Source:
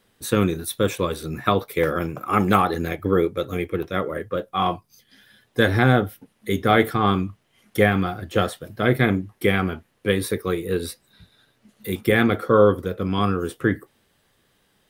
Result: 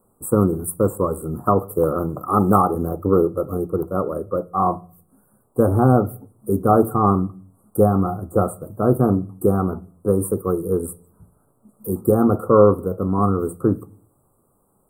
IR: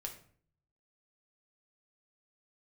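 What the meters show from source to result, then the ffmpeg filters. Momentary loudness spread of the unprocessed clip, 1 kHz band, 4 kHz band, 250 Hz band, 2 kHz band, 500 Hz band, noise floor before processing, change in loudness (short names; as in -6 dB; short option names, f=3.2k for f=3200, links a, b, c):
10 LU, +2.5 dB, under -40 dB, +3.0 dB, -18.5 dB, +3.0 dB, -66 dBFS, +2.0 dB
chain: -filter_complex "[0:a]asuperstop=centerf=3300:order=20:qfactor=0.51,bandreject=f=57.86:t=h:w=4,bandreject=f=115.72:t=h:w=4,bandreject=f=173.58:t=h:w=4,asplit=2[a][b];[1:a]atrim=start_sample=2205[c];[b][c]afir=irnorm=-1:irlink=0,volume=-9.5dB[d];[a][d]amix=inputs=2:normalize=0,volume=1.5dB"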